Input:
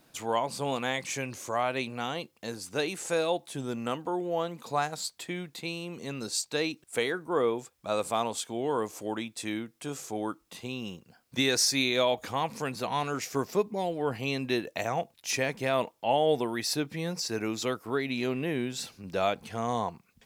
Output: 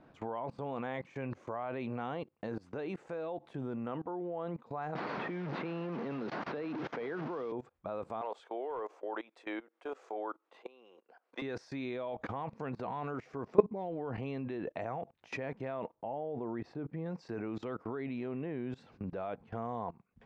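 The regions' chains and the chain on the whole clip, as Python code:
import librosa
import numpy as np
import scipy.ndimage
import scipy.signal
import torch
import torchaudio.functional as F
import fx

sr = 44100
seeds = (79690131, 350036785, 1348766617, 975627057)

y = fx.chain(x, sr, fx.delta_mod(bps=32000, step_db=-35.0),
    fx.highpass(hz=140.0, slope=24),
    fx.band_squash(depth_pct=100), at=(4.95, 7.52))
y = fx.chain(y, sr, fx.highpass(hz=420.0, slope=24),
    fx.clip_hard(threshold_db=-24.0), at=(8.21, 11.42))
y = fx.chain(y, sr, fx.block_float(bits=7),
    fx.lowpass(hz=1000.0, slope=6), at=(15.95, 17.06))
y = scipy.signal.sosfilt(scipy.signal.butter(2, 1400.0, 'lowpass', fs=sr, output='sos'), y)
y = fx.level_steps(y, sr, step_db=22)
y = F.gain(torch.from_numpy(y), 6.0).numpy()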